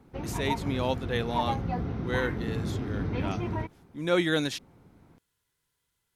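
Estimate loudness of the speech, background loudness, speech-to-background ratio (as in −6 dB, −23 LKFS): −31.5 LKFS, −33.0 LKFS, 1.5 dB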